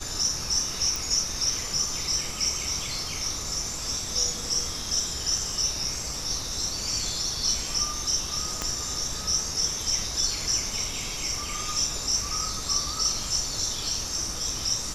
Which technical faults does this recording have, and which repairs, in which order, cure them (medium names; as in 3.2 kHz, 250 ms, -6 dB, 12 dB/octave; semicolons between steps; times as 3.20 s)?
0.96 s: pop
8.62 s: pop -13 dBFS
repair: de-click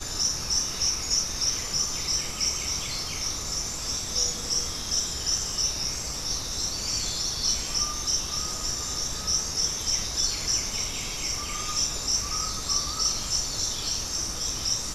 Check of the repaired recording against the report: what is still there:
8.62 s: pop